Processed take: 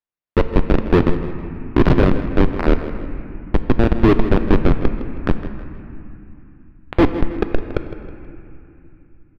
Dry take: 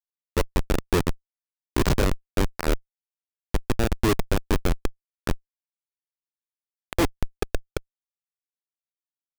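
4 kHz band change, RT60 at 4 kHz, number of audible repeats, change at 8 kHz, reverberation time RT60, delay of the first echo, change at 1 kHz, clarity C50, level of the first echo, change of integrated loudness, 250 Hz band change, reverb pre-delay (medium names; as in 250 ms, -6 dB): -1.0 dB, 2.1 s, 2, under -15 dB, 2.8 s, 160 ms, +6.5 dB, 8.0 dB, -13.5 dB, +8.5 dB, +11.0 dB, 3 ms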